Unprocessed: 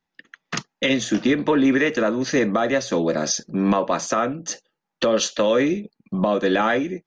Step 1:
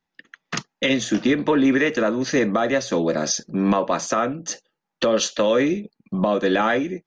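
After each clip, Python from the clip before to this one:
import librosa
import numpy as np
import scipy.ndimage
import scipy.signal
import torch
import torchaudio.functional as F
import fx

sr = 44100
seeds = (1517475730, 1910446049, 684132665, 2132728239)

y = x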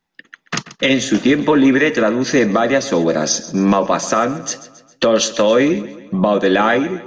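y = fx.echo_feedback(x, sr, ms=135, feedback_pct=51, wet_db=-16.5)
y = F.gain(torch.from_numpy(y), 5.5).numpy()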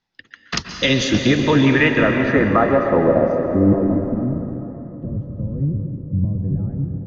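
y = fx.octave_divider(x, sr, octaves=1, level_db=-3.0)
y = fx.filter_sweep_lowpass(y, sr, from_hz=4900.0, to_hz=130.0, start_s=1.28, end_s=4.71, q=2.1)
y = fx.rev_plate(y, sr, seeds[0], rt60_s=3.6, hf_ratio=0.7, predelay_ms=110, drr_db=4.5)
y = F.gain(torch.from_numpy(y), -4.0).numpy()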